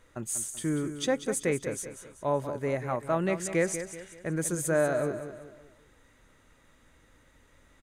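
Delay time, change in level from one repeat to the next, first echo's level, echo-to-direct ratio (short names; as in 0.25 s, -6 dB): 0.191 s, -7.5 dB, -10.5 dB, -9.5 dB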